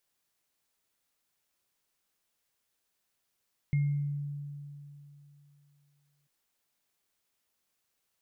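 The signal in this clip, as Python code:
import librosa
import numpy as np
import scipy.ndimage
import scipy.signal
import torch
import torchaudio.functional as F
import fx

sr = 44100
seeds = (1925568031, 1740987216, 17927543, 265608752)

y = fx.additive_free(sr, length_s=2.54, hz=144.0, level_db=-23.0, upper_db=(-17.5,), decay_s=2.99, upper_decays_s=(0.58,), upper_hz=(2130.0,))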